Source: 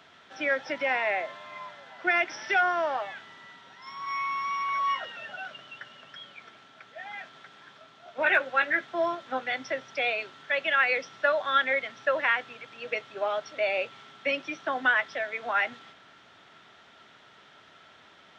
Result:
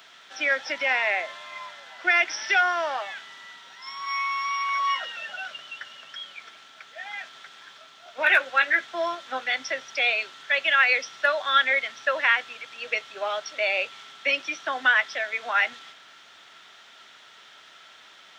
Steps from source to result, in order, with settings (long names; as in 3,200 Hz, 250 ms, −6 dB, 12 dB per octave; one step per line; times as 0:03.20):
spectral tilt +3.5 dB per octave
level +1.5 dB